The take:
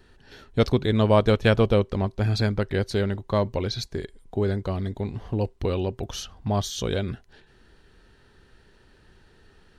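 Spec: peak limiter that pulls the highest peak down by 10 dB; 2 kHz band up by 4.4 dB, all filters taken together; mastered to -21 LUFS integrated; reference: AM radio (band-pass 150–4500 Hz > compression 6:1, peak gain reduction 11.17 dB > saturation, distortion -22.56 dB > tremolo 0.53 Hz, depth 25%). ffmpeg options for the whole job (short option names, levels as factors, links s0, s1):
-af "equalizer=f=2000:t=o:g=6,alimiter=limit=0.188:level=0:latency=1,highpass=150,lowpass=4500,acompressor=threshold=0.0282:ratio=6,asoftclip=threshold=0.0841,tremolo=f=0.53:d=0.25,volume=7.94"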